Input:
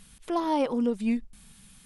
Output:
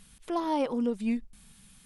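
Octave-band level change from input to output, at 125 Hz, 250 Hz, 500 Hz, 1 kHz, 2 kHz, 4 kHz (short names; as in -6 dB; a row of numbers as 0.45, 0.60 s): n/a, -2.5 dB, -2.5 dB, -2.5 dB, -2.5 dB, -2.5 dB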